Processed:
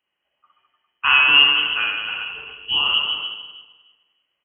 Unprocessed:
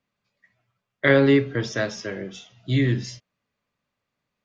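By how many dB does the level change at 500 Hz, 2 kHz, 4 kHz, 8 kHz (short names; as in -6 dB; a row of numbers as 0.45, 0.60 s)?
-20.5 dB, +9.5 dB, +20.0 dB, n/a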